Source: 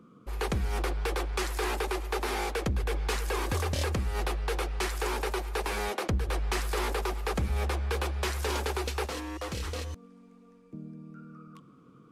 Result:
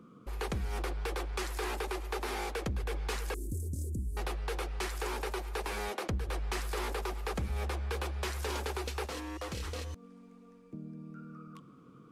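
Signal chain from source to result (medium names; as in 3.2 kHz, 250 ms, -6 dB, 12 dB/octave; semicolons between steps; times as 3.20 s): 3.34–4.17 s: elliptic band-stop 310–7900 Hz, stop band 70 dB; in parallel at +3 dB: compression, threshold -41 dBFS, peak gain reduction 15 dB; on the sum: trim -7.5 dB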